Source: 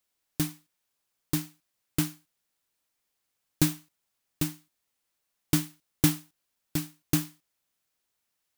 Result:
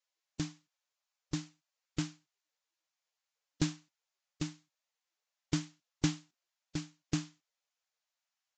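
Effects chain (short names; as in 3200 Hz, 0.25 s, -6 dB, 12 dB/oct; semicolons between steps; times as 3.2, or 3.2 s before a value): gain -7 dB; Vorbis 48 kbps 16000 Hz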